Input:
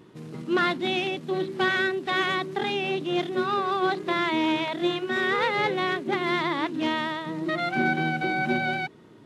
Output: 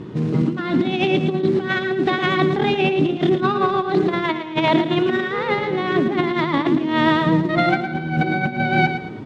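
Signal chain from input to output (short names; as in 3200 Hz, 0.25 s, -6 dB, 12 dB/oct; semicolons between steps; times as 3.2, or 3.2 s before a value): low shelf 370 Hz +10 dB; negative-ratio compressor -26 dBFS, ratio -0.5; air absorption 84 m; feedback echo 0.112 s, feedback 34%, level -9 dB; gain +7.5 dB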